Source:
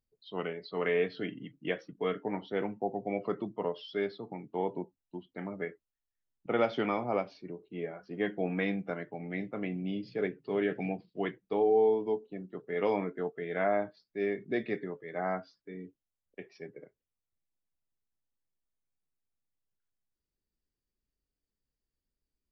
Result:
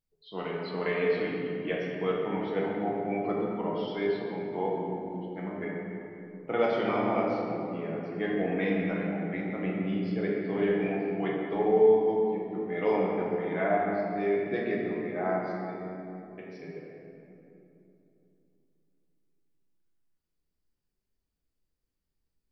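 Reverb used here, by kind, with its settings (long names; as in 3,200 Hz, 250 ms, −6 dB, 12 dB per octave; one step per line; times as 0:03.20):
rectangular room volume 130 cubic metres, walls hard, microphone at 0.63 metres
level −2 dB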